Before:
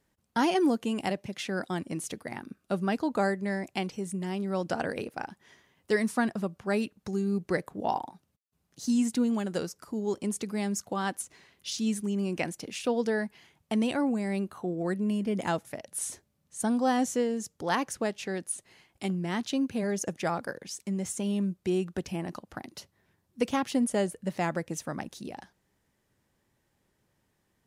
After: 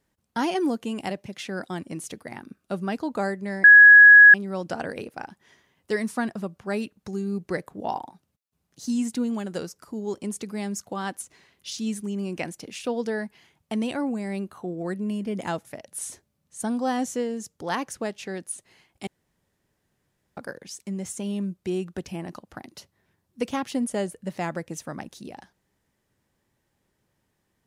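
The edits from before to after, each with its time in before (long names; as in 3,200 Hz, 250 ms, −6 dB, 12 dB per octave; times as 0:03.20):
0:03.64–0:04.34: beep over 1,670 Hz −6.5 dBFS
0:19.07–0:20.37: fill with room tone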